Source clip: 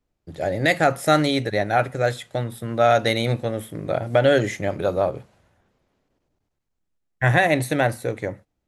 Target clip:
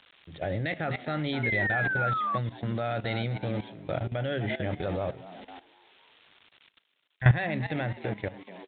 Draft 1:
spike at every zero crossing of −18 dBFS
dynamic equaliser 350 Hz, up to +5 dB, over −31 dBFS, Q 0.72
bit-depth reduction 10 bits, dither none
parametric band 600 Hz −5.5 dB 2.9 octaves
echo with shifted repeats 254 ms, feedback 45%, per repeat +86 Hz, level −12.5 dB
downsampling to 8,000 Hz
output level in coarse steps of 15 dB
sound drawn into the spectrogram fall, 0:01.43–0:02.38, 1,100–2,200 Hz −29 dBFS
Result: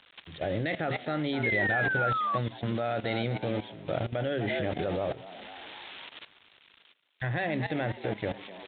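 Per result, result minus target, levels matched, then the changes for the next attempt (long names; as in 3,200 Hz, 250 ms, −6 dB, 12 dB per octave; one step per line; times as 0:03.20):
spike at every zero crossing: distortion +9 dB; 125 Hz band −4.5 dB
change: spike at every zero crossing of −27 dBFS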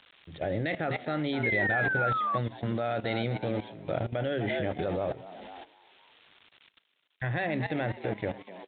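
125 Hz band −4.5 dB
change: dynamic equaliser 95 Hz, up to +5 dB, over −31 dBFS, Q 0.72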